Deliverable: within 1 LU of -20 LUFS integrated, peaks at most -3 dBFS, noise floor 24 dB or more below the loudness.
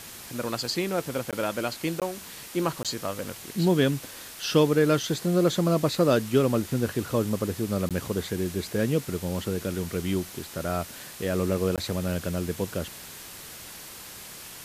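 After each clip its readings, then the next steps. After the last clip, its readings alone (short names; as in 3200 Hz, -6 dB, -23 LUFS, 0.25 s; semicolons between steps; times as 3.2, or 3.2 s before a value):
dropouts 5; longest dropout 17 ms; noise floor -43 dBFS; noise floor target -52 dBFS; loudness -27.5 LUFS; peak -8.5 dBFS; loudness target -20.0 LUFS
-> interpolate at 1.31/2/2.83/7.89/11.76, 17 ms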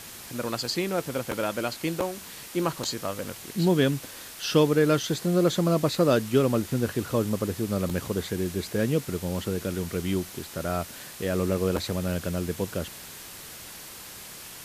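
dropouts 0; noise floor -43 dBFS; noise floor target -51 dBFS
-> denoiser 8 dB, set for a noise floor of -43 dBFS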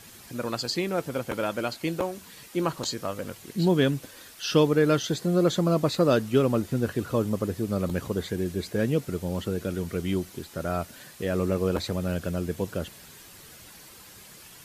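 noise floor -49 dBFS; noise floor target -52 dBFS
-> denoiser 6 dB, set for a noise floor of -49 dBFS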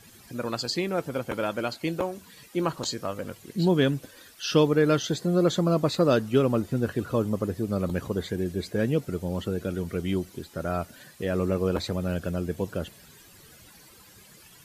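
noise floor -53 dBFS; loudness -27.5 LUFS; peak -8.5 dBFS; loudness target -20.0 LUFS
-> gain +7.5 dB; limiter -3 dBFS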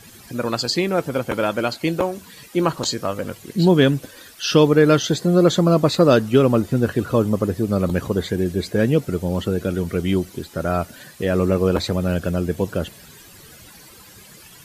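loudness -20.0 LUFS; peak -3.0 dBFS; noise floor -45 dBFS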